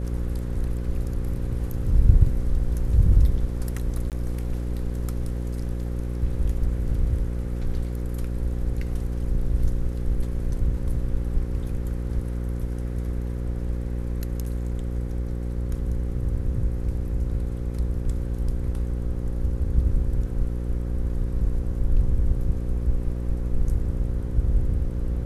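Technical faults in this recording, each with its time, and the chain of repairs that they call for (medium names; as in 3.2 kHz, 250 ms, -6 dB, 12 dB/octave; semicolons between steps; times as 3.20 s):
buzz 60 Hz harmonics 9 -28 dBFS
4.10–4.12 s: dropout 18 ms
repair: de-hum 60 Hz, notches 9; interpolate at 4.10 s, 18 ms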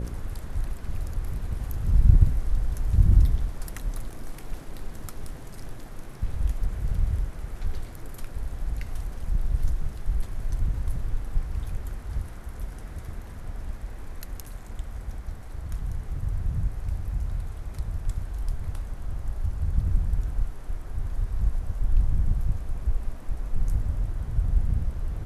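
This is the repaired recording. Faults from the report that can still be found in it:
nothing left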